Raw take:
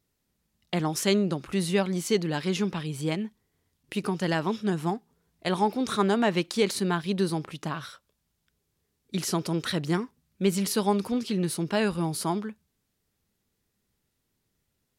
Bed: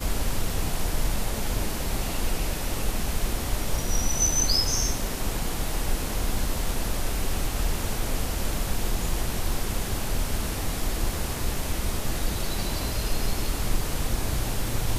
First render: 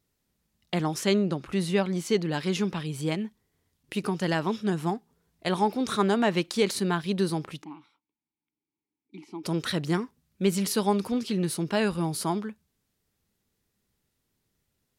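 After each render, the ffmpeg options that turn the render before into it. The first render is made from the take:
-filter_complex "[0:a]asettb=1/sr,asplit=3[a][b][c];[a]atrim=end=0.944[d];[b]atrim=start=0.94:end=2.32,asetpts=PTS-STARTPTS,afade=t=in:d=0.004:c=qsin,afade=t=out:st=1.376:d=0.004:c=qsin,highshelf=f=5.9k:g=-6.5[e];[c]atrim=start=2.316[f];[d][e]acrossfade=d=0.004:c1=hsin:c2=qsin[g];[g][f]acrossfade=d=0.004:c1=qsin:c2=hsin,asplit=3[h][i][j];[h]afade=t=out:st=7.62:d=0.02[k];[i]asplit=3[l][m][n];[l]bandpass=f=300:t=q:w=8,volume=0dB[o];[m]bandpass=f=870:t=q:w=8,volume=-6dB[p];[n]bandpass=f=2.24k:t=q:w=8,volume=-9dB[q];[o][p][q]amix=inputs=3:normalize=0,afade=t=in:st=7.62:d=0.02,afade=t=out:st=9.43:d=0.02[r];[j]afade=t=in:st=9.43:d=0.02[s];[k][r][s]amix=inputs=3:normalize=0"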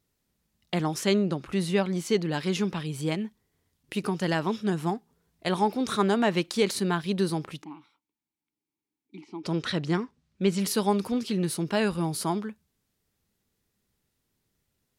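-filter_complex "[0:a]asettb=1/sr,asplit=3[a][b][c];[a]atrim=end=9.214[d];[b]atrim=start=9.21:end=10.59,asetpts=PTS-STARTPTS,afade=t=in:d=0.004:c=qsin,afade=t=out:st=1.376:d=0.004:c=qsin,lowpass=6k[e];[c]atrim=start=10.586[f];[d][e]acrossfade=d=0.004:c1=hsin:c2=qsin[g];[g][f]acrossfade=d=0.004:c1=qsin:c2=hsin"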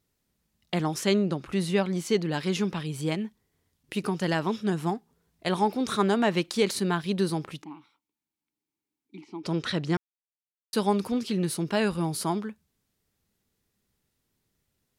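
-filter_complex "[0:a]asplit=3[a][b][c];[a]atrim=end=9.97,asetpts=PTS-STARTPTS,afade=t=out:st=9.966:d=0.004:c=hsin[d];[b]atrim=start=9.97:end=10.73,asetpts=PTS-STARTPTS,volume=0[e];[c]atrim=start=10.73,asetpts=PTS-STARTPTS,afade=t=in:d=0.004:c=hsin[f];[d][e][f]concat=n=3:v=0:a=1"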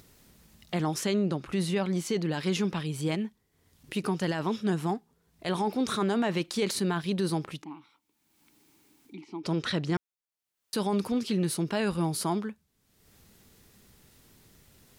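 -af "acompressor=mode=upward:threshold=-42dB:ratio=2.5,alimiter=limit=-19.5dB:level=0:latency=1:release=11"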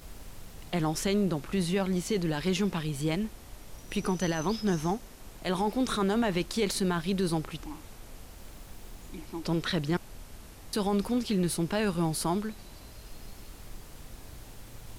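-filter_complex "[1:a]volume=-19.5dB[a];[0:a][a]amix=inputs=2:normalize=0"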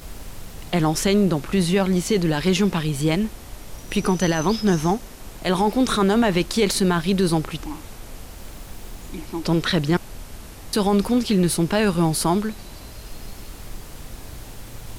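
-af "volume=9dB"

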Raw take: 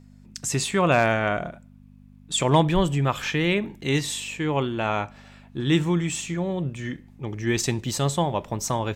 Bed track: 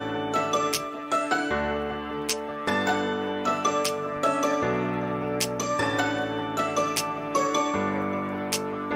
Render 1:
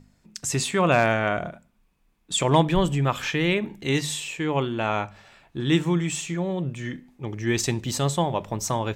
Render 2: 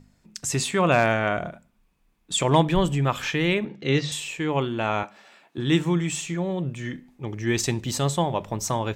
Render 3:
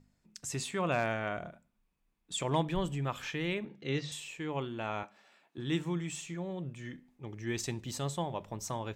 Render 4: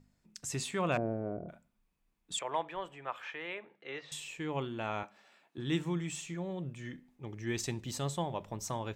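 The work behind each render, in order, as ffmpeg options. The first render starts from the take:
-af "bandreject=f=50:t=h:w=4,bandreject=f=100:t=h:w=4,bandreject=f=150:t=h:w=4,bandreject=f=200:t=h:w=4,bandreject=f=250:t=h:w=4"
-filter_complex "[0:a]asettb=1/sr,asplit=3[a][b][c];[a]atrim=end=3.654[d];[b]atrim=start=3.65:end=4.12,asetpts=PTS-STARTPTS,afade=t=in:d=0.004:c=qsin,afade=t=out:st=0.466:d=0.004:c=qsin,highpass=120,equalizer=f=140:t=q:w=4:g=5,equalizer=f=500:t=q:w=4:g=8,equalizer=f=940:t=q:w=4:g=-6,equalizer=f=1.3k:t=q:w=4:g=4,lowpass=f=5.4k:w=0.5412,lowpass=f=5.4k:w=1.3066[e];[c]atrim=start=4.116[f];[d][e]acrossfade=d=0.004:c1=hsin:c2=qsin[g];[g][f]acrossfade=d=0.004:c1=qsin:c2=hsin,asettb=1/sr,asplit=3[h][i][j];[h]atrim=end=5.034[k];[i]atrim=start=5.03:end=5.58,asetpts=PTS-STARTPTS,afade=t=in:d=0.004:c=qsin,afade=t=out:st=0.546:d=0.004:c=qsin,highpass=f=210:w=0.5412,highpass=f=210:w=1.3066[l];[j]atrim=start=5.576[m];[k][l]acrossfade=d=0.004:c1=hsin:c2=qsin[n];[n][m]acrossfade=d=0.004:c1=qsin:c2=hsin"
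-af "volume=-11.5dB"
-filter_complex "[0:a]asettb=1/sr,asplit=3[a][b][c];[a]atrim=end=0.974[d];[b]atrim=start=0.97:end=1.49,asetpts=PTS-STARTPTS,afade=t=in:d=0.004:c=qsin,afade=t=out:st=0.516:d=0.004:c=qsin,lowpass=f=410:t=q:w=2.1[e];[c]atrim=start=1.486[f];[d][e]acrossfade=d=0.004:c1=hsin:c2=qsin[g];[g][f]acrossfade=d=0.004:c1=qsin:c2=hsin,asettb=1/sr,asplit=3[h][i][j];[h]atrim=end=2.394[k];[i]atrim=start=2.39:end=4.12,asetpts=PTS-STARTPTS,afade=t=in:d=0.004:c=qsin,afade=t=out:st=1.726:d=0.004:c=qsin,acrossover=split=480 2700:gain=0.0631 1 0.141[l][m][n];[l][m][n]amix=inputs=3:normalize=0[o];[j]atrim=start=4.116[p];[k][o]acrossfade=d=0.004:c1=hsin:c2=qsin[q];[q][p]acrossfade=d=0.004:c1=qsin:c2=hsin"

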